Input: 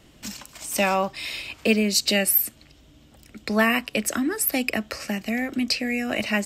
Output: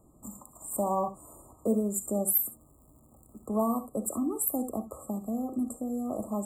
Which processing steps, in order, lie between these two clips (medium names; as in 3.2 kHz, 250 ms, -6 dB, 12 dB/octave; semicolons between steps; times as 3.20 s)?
gated-style reverb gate 90 ms rising, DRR 10.5 dB; 2.26–3.45 s: crackle 420 per s -41 dBFS; FFT band-reject 1.3–7 kHz; trim -6 dB